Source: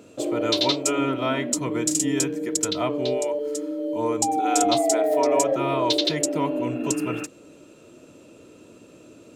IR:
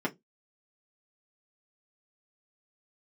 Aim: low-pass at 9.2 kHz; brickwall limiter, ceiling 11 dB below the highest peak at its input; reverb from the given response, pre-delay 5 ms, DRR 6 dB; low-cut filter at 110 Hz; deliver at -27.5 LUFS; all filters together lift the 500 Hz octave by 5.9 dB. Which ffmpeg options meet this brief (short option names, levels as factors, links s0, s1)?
-filter_complex "[0:a]highpass=110,lowpass=9200,equalizer=f=500:t=o:g=7.5,alimiter=limit=0.168:level=0:latency=1,asplit=2[s0][s1];[1:a]atrim=start_sample=2205,adelay=5[s2];[s1][s2]afir=irnorm=-1:irlink=0,volume=0.224[s3];[s0][s3]amix=inputs=2:normalize=0,volume=0.501"